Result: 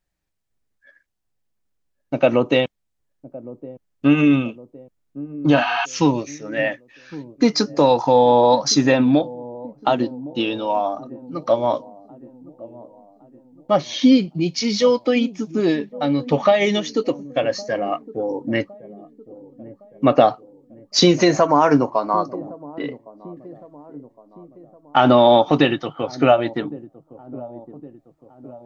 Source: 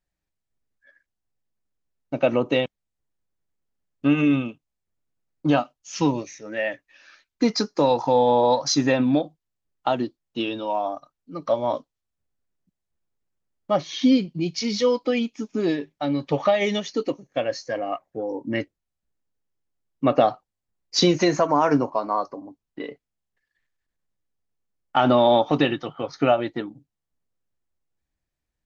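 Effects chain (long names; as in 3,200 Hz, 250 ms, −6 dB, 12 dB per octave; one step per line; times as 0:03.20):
delay with a low-pass on its return 1,112 ms, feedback 48%, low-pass 510 Hz, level −16 dB
healed spectral selection 0:05.59–0:05.82, 710–6,300 Hz before
level +4.5 dB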